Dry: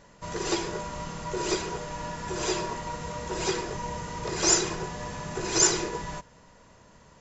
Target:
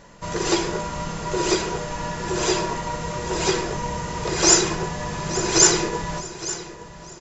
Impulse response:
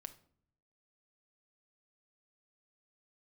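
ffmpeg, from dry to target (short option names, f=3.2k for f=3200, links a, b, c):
-filter_complex "[0:a]aecho=1:1:865|1730|2595|3460:0.188|0.0791|0.0332|0.014,asplit=2[a][b];[1:a]atrim=start_sample=2205[c];[b][c]afir=irnorm=-1:irlink=0,volume=5dB[d];[a][d]amix=inputs=2:normalize=0,volume=1dB"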